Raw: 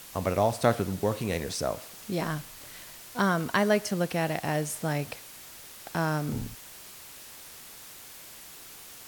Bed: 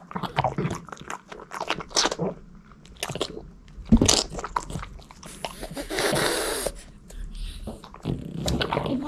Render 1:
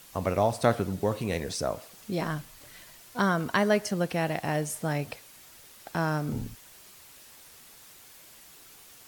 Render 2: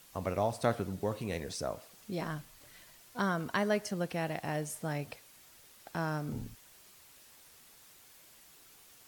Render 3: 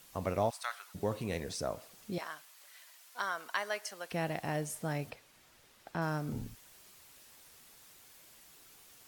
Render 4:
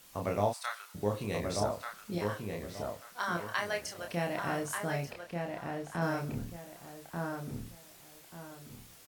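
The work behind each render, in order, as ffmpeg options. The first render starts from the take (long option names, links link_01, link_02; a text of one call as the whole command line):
ffmpeg -i in.wav -af "afftdn=noise_reduction=6:noise_floor=-47" out.wav
ffmpeg -i in.wav -af "volume=-6.5dB" out.wav
ffmpeg -i in.wav -filter_complex "[0:a]asplit=3[link_01][link_02][link_03];[link_01]afade=type=out:start_time=0.49:duration=0.02[link_04];[link_02]highpass=frequency=1100:width=0.5412,highpass=frequency=1100:width=1.3066,afade=type=in:start_time=0.49:duration=0.02,afade=type=out:start_time=0.94:duration=0.02[link_05];[link_03]afade=type=in:start_time=0.94:duration=0.02[link_06];[link_04][link_05][link_06]amix=inputs=3:normalize=0,asettb=1/sr,asplit=3[link_07][link_08][link_09];[link_07]atrim=end=2.184[link_10];[link_08]atrim=start=2.18:end=4.12,asetpts=PTS-STARTPTS,afade=type=in:duration=0.004:curve=qsin,afade=type=out:start_time=1.936:duration=0.004:curve=qsin,highpass=860[link_11];[link_09]atrim=start=4.116[link_12];[link_10][link_11]acrossfade=duration=0.004:curve1=hsin:curve2=qsin[link_13];[link_13][link_12]acrossfade=duration=0.004:curve1=qsin:curve2=hsin,asettb=1/sr,asplit=3[link_14][link_15][link_16];[link_14]atrim=end=5.104[link_17];[link_15]atrim=start=5.1:end=6.02,asetpts=PTS-STARTPTS,afade=type=in:duration=0.004:curve=qsin,afade=type=out:start_time=0.916:duration=0.004:curve=qsin,highshelf=frequency=5600:gain=-10[link_18];[link_16]atrim=start=6.016[link_19];[link_17][link_18]acrossfade=duration=0.004:curve1=hsin:curve2=qsin[link_20];[link_20][link_19]acrossfade=duration=0.004:curve1=qsin:curve2=hsin" out.wav
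ffmpeg -i in.wav -filter_complex "[0:a]asplit=2[link_01][link_02];[link_02]adelay=29,volume=-3.5dB[link_03];[link_01][link_03]amix=inputs=2:normalize=0,asplit=2[link_04][link_05];[link_05]adelay=1187,lowpass=frequency=2000:poles=1,volume=-3dB,asplit=2[link_06][link_07];[link_07]adelay=1187,lowpass=frequency=2000:poles=1,volume=0.29,asplit=2[link_08][link_09];[link_09]adelay=1187,lowpass=frequency=2000:poles=1,volume=0.29,asplit=2[link_10][link_11];[link_11]adelay=1187,lowpass=frequency=2000:poles=1,volume=0.29[link_12];[link_06][link_08][link_10][link_12]amix=inputs=4:normalize=0[link_13];[link_04][link_13]amix=inputs=2:normalize=0" out.wav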